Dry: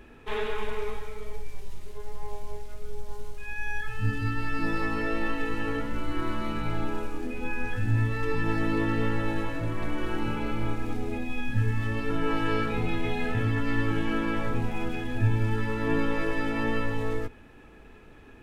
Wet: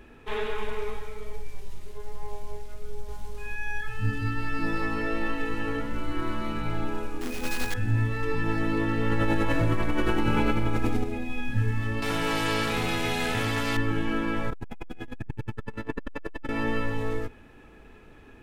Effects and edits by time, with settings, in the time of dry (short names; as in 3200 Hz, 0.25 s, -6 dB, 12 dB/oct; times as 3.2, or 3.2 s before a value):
2.82–3.29 echo throw 0.26 s, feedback 15%, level -2.5 dB
7.21–7.74 companded quantiser 4-bit
9.06–11.04 fast leveller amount 100%
12.02–13.77 spectral compressor 2:1
14.5–16.49 core saturation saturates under 170 Hz